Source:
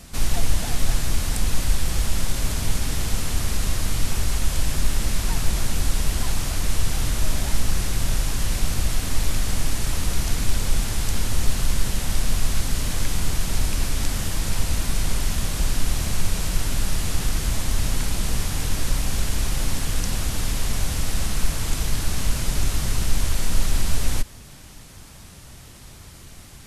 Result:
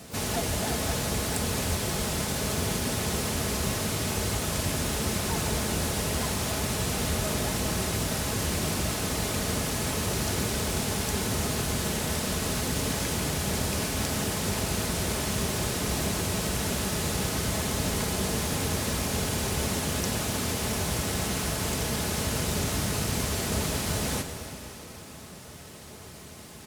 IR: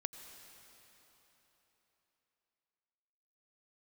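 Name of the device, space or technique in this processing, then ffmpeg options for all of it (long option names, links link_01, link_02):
shimmer-style reverb: -filter_complex "[0:a]aecho=1:1:4.7:0.33,asplit=2[link_01][link_02];[link_02]asetrate=88200,aresample=44100,atempo=0.5,volume=-10dB[link_03];[link_01][link_03]amix=inputs=2:normalize=0[link_04];[1:a]atrim=start_sample=2205[link_05];[link_04][link_05]afir=irnorm=-1:irlink=0,highpass=frequency=73:width=0.5412,highpass=frequency=73:width=1.3066,equalizer=frequency=510:width_type=o:width=1.8:gain=6"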